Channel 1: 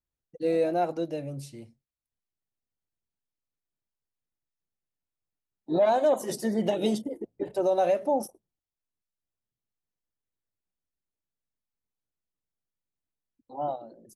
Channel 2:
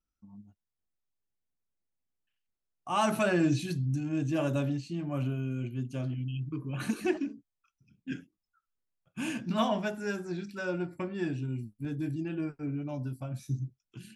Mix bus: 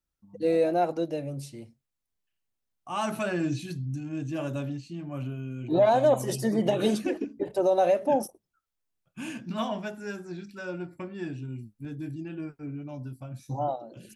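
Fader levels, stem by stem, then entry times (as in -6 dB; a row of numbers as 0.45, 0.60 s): +1.5, -2.5 dB; 0.00, 0.00 s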